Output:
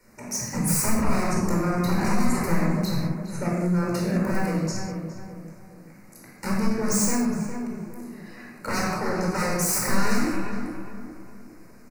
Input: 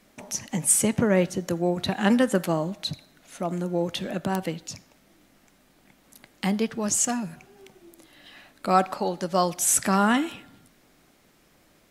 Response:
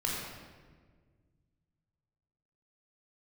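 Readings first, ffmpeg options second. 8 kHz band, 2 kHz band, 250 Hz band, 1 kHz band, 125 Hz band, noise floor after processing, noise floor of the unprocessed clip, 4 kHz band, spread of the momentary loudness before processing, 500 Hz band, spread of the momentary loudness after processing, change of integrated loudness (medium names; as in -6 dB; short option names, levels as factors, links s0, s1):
-3.0 dB, +1.5 dB, +1.5 dB, -2.5 dB, +5.0 dB, -48 dBFS, -61 dBFS, -2.0 dB, 13 LU, -2.5 dB, 17 LU, -1.0 dB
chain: -filter_complex "[0:a]aeval=exprs='0.075*(abs(mod(val(0)/0.075+3,4)-2)-1)':c=same,asuperstop=centerf=3300:order=4:qfactor=1.5[s0];[1:a]atrim=start_sample=2205,afade=t=out:st=0.26:d=0.01,atrim=end_sample=11907[s1];[s0][s1]afir=irnorm=-1:irlink=0,acrossover=split=140|3000[s2][s3][s4];[s3]acompressor=threshold=0.0708:ratio=6[s5];[s2][s5][s4]amix=inputs=3:normalize=0,asplit=2[s6][s7];[s7]adelay=411,lowpass=f=1600:p=1,volume=0.447,asplit=2[s8][s9];[s9]adelay=411,lowpass=f=1600:p=1,volume=0.42,asplit=2[s10][s11];[s11]adelay=411,lowpass=f=1600:p=1,volume=0.42,asplit=2[s12][s13];[s13]adelay=411,lowpass=f=1600:p=1,volume=0.42,asplit=2[s14][s15];[s15]adelay=411,lowpass=f=1600:p=1,volume=0.42[s16];[s6][s8][s10][s12][s14][s16]amix=inputs=6:normalize=0"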